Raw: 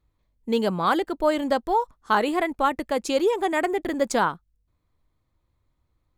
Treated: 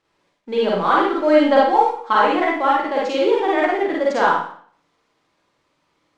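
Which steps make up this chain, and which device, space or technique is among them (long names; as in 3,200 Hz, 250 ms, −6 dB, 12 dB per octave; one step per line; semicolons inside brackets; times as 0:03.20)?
phone line with mismatched companding (band-pass filter 320–3,300 Hz; mu-law and A-law mismatch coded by mu)
low-pass filter 6,600 Hz 12 dB per octave
0:01.03–0:02.13: comb filter 3.7 ms, depth 84%
four-comb reverb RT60 0.54 s, DRR −5 dB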